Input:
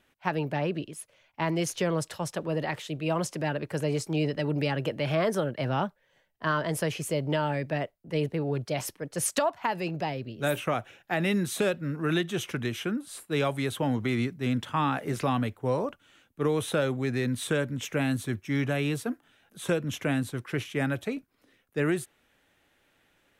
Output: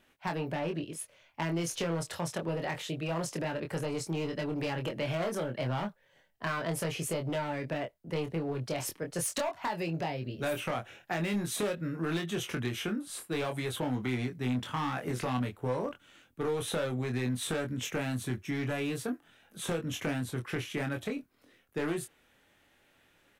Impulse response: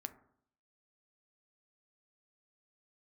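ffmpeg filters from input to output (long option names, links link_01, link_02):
-filter_complex "[0:a]asoftclip=type=hard:threshold=-23.5dB,acompressor=threshold=-31dB:ratio=6,asplit=2[link_01][link_02];[link_02]adelay=24,volume=-5dB[link_03];[link_01][link_03]amix=inputs=2:normalize=0"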